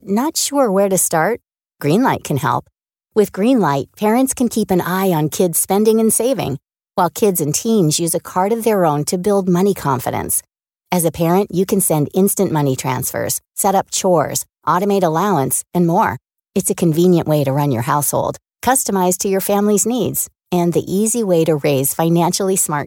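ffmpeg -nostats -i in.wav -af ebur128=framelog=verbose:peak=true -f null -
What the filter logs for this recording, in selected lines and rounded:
Integrated loudness:
  I:         -16.2 LUFS
  Threshold: -26.2 LUFS
Loudness range:
  LRA:         1.3 LU
  Threshold: -36.4 LUFS
  LRA low:   -17.0 LUFS
  LRA high:  -15.7 LUFS
True peak:
  Peak:       -1.6 dBFS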